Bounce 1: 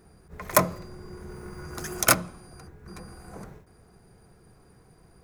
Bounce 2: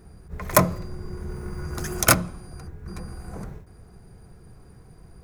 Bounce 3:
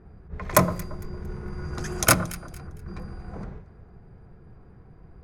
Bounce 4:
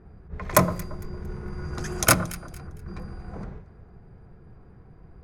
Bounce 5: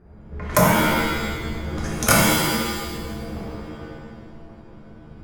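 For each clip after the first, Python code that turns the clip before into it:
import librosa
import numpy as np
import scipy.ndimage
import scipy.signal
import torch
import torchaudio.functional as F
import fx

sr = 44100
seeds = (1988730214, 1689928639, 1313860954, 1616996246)

y1 = fx.low_shelf(x, sr, hz=150.0, db=10.5)
y1 = y1 * 10.0 ** (2.0 / 20.0)
y2 = fx.env_lowpass(y1, sr, base_hz=1900.0, full_db=-21.5)
y2 = fx.echo_alternate(y2, sr, ms=114, hz=1500.0, feedback_pct=53, wet_db=-13.5)
y2 = y2 * 10.0 ** (-1.0 / 20.0)
y3 = y2
y4 = fx.rev_shimmer(y3, sr, seeds[0], rt60_s=1.3, semitones=7, shimmer_db=-2, drr_db=-3.5)
y4 = y4 * 10.0 ** (-2.0 / 20.0)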